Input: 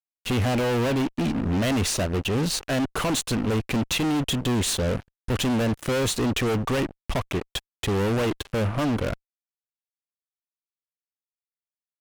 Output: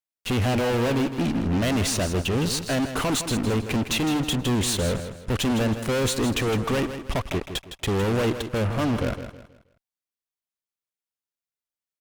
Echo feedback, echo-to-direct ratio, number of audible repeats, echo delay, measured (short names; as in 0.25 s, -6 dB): 34%, -9.5 dB, 3, 0.16 s